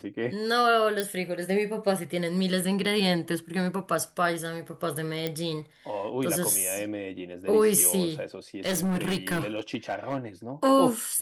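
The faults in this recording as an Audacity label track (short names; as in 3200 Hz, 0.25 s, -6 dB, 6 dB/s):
1.000000	1.000000	pop
5.270000	5.270000	pop -15 dBFS
8.660000	10.180000	clipped -23.5 dBFS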